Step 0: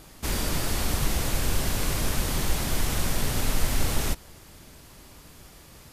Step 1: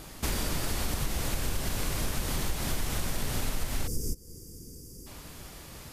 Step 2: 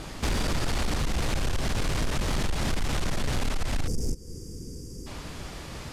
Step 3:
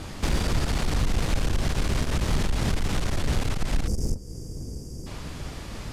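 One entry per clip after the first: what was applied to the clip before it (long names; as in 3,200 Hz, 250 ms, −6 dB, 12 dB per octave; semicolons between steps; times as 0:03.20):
gain on a spectral selection 0:03.87–0:05.07, 530–4,600 Hz −26 dB; downward compressor 4 to 1, threshold −31 dBFS, peak gain reduction 13 dB; level +3.5 dB
high-frequency loss of the air 65 metres; soft clipping −29 dBFS, distortion −12 dB; level +8 dB
sub-octave generator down 1 octave, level +3 dB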